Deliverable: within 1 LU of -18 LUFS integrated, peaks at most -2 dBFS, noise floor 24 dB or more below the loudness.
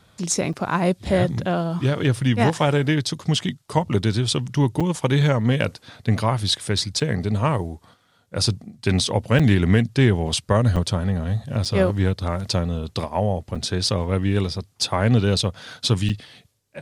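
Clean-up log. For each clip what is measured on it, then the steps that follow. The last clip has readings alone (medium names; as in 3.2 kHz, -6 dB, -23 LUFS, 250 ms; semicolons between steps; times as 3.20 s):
dropouts 8; longest dropout 5.5 ms; loudness -22.0 LUFS; peak level -4.0 dBFS; loudness target -18.0 LUFS
-> interpolate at 0.53/4.80/7.00/9.39/10.76/11.65/13.55/16.09 s, 5.5 ms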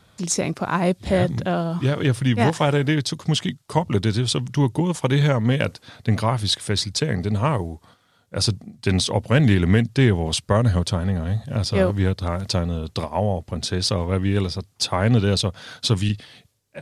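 dropouts 0; loudness -22.0 LUFS; peak level -4.0 dBFS; loudness target -18.0 LUFS
-> trim +4 dB; peak limiter -2 dBFS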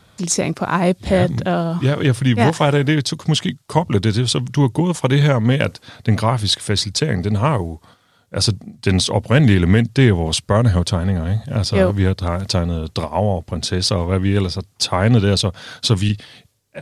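loudness -18.0 LUFS; peak level -2.0 dBFS; noise floor -57 dBFS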